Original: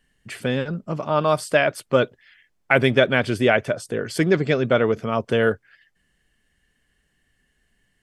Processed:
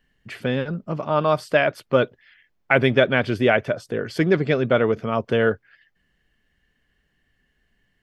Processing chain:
parametric band 8,900 Hz −14 dB 0.91 octaves

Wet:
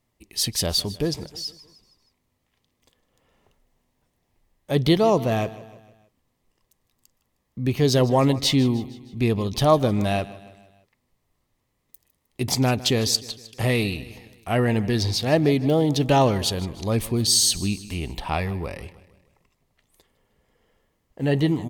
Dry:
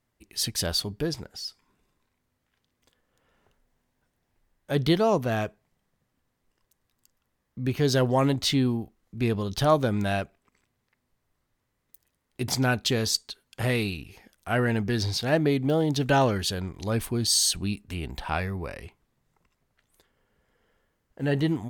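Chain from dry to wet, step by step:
parametric band 1,500 Hz −12 dB 0.26 octaves
repeating echo 155 ms, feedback 51%, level −18 dB
level +4 dB

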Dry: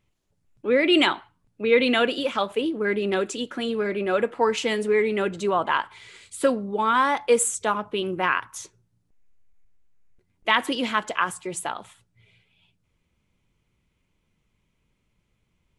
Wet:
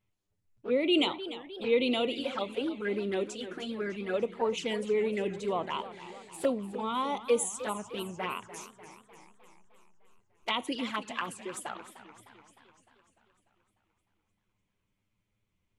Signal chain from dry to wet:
flanger swept by the level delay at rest 10 ms, full sweep at −19.5 dBFS
feedback echo with a swinging delay time 301 ms, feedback 60%, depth 165 cents, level −14 dB
level −6 dB

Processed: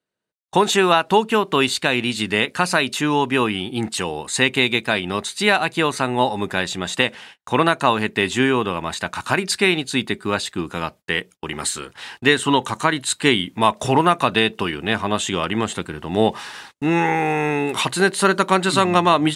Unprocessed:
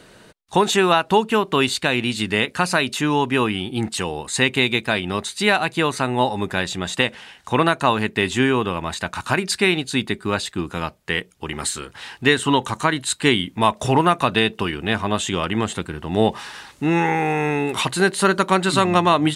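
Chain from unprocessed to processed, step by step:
high-pass filter 130 Hz 6 dB per octave
noise gate −40 dBFS, range −37 dB
level +1 dB

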